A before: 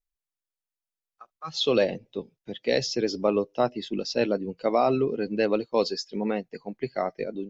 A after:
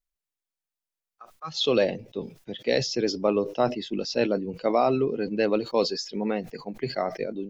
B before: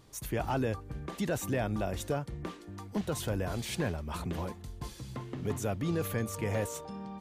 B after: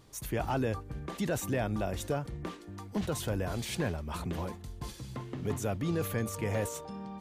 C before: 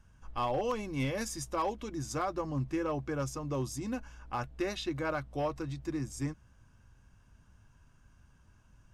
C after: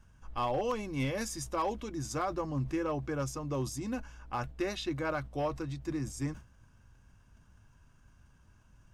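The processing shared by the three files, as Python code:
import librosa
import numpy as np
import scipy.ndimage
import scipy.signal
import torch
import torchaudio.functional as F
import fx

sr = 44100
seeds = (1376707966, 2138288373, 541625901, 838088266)

y = fx.sustainer(x, sr, db_per_s=140.0)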